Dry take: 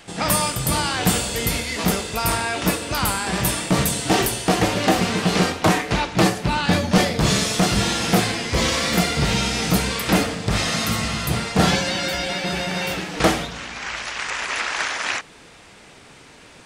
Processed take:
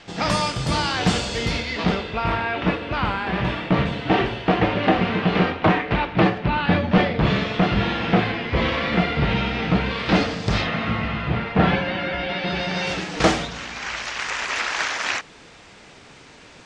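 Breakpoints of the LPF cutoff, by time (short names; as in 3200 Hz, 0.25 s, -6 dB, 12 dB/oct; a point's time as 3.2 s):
LPF 24 dB/oct
1.35 s 6000 Hz
2.26 s 3100 Hz
9.83 s 3100 Hz
10.49 s 6700 Hz
10.7 s 2800 Hz
12.15 s 2800 Hz
13.03 s 7400 Hz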